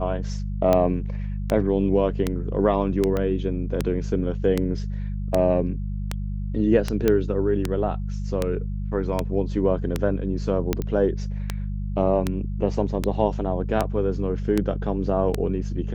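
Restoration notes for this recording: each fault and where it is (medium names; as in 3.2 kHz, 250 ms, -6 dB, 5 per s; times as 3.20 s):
hum 50 Hz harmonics 4 -28 dBFS
tick 78 rpm -8 dBFS
3.17 s: pop -14 dBFS
7.08 s: pop -8 dBFS
10.82 s: pop -16 dBFS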